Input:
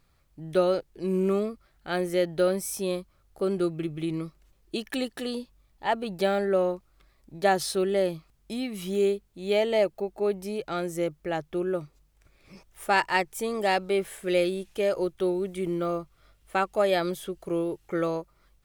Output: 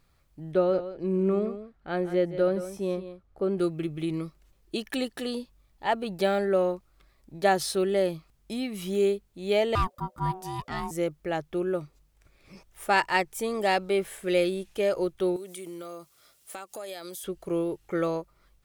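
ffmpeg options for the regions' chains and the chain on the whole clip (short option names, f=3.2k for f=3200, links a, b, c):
-filter_complex "[0:a]asettb=1/sr,asplit=3[a][b][c];[a]atrim=end=0.524[d];[b]atrim=start=0.52:end=3.58,asetpts=PTS-STARTPTS,afade=t=in:d=0.004:c=qsin,afade=t=out:st=3.056:d=0.004:c=qsin,lowpass=f=1.3k:p=1,aecho=1:1:170:0.251,atrim=end_sample=134946[e];[c]atrim=start=3.576[f];[d][e]acrossfade=d=0.004:c1=hsin:c2=qsin[g];[g][f]acrossfade=d=0.004:c1=qsin:c2=hsin,asettb=1/sr,asplit=3[h][i][j];[h]atrim=end=9.754[k];[i]atrim=start=9.75:end=10.91,asetpts=PTS-STARTPTS,afade=t=in:d=0.004:c=qsin,afade=t=out:st=1.156:d=0.004:c=qsin,bass=f=250:g=1,treble=f=4k:g=3,aeval=exprs='val(0)*sin(2*PI*560*n/s)':c=same[l];[j]atrim=start=10.906[m];[k][l]acrossfade=d=0.004:c1=hsin:c2=qsin[n];[n][m]acrossfade=d=0.004:c1=qsin:c2=hsin,asettb=1/sr,asplit=3[o][p][q];[o]atrim=end=15.364[r];[p]atrim=start=15.36:end=17.24,asetpts=PTS-STARTPTS,afade=t=in:d=0.004:c=qsin,afade=t=out:st=1.876:d=0.004:c=qsin,highpass=110,bass=f=250:g=-8,treble=f=4k:g=14,acompressor=threshold=-37dB:ratio=5:attack=3.2:release=140:knee=1:detection=peak[s];[q]atrim=start=17.236[t];[r][s]acrossfade=d=0.004:c1=hsin:c2=qsin[u];[u][t]acrossfade=d=0.004:c1=qsin:c2=hsin"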